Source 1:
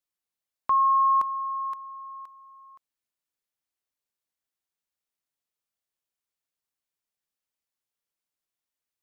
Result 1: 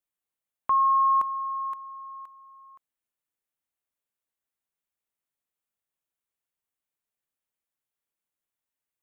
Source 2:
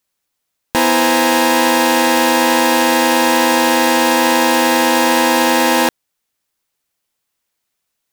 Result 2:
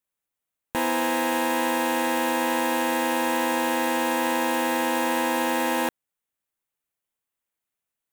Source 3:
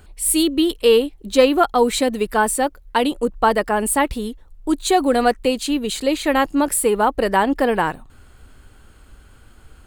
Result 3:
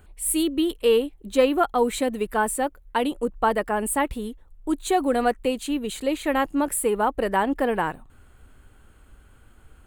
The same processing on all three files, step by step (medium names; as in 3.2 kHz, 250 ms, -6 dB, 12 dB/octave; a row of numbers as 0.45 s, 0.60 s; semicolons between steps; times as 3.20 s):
peaking EQ 4.9 kHz -9 dB 0.76 oct; normalise loudness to -24 LUFS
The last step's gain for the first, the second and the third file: 0.0 dB, -11.0 dB, -5.0 dB